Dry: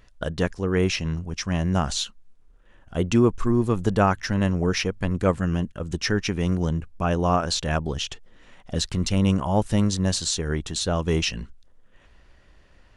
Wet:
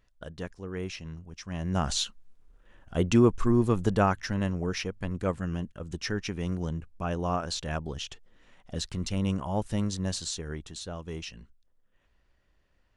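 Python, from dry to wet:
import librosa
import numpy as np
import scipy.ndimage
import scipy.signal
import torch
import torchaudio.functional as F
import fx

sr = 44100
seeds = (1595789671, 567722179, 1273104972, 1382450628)

y = fx.gain(x, sr, db=fx.line((1.42, -13.5), (1.91, -2.0), (3.66, -2.0), (4.66, -8.0), (10.21, -8.0), (11.03, -15.0)))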